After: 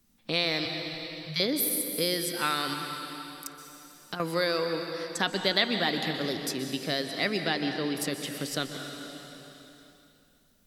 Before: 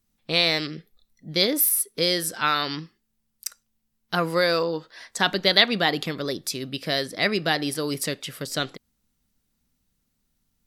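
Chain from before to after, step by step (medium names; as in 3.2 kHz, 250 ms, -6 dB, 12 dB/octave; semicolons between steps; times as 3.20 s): 7.40–7.95 s: low-pass 6.7 kHz -> 3.2 kHz 24 dB/octave; peaking EQ 270 Hz +4.5 dB 0.48 oct; 0.65–1.40 s: Chebyshev band-stop 170–830 Hz, order 5; 2.73–4.20 s: compression 6:1, threshold -34 dBFS, peak gain reduction 14.5 dB; reverberation RT60 2.4 s, pre-delay 113 ms, DRR 6.5 dB; three bands compressed up and down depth 40%; trim -6 dB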